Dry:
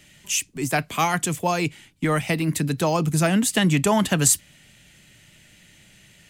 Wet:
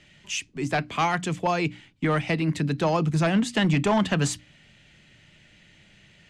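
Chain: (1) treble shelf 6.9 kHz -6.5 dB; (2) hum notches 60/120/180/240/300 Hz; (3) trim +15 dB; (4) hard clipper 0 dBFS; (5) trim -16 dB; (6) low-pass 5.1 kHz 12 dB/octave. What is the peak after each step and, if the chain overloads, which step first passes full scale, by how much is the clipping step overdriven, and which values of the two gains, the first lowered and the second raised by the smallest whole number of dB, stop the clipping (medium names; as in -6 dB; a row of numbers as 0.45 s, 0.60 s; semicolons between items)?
-7.5 dBFS, -7.5 dBFS, +7.5 dBFS, 0.0 dBFS, -16.0 dBFS, -15.5 dBFS; step 3, 7.5 dB; step 3 +7 dB, step 5 -8 dB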